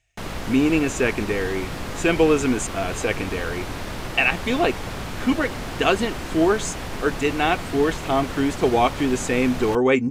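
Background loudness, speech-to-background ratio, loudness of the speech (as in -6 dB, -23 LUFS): -32.0 LUFS, 9.5 dB, -22.5 LUFS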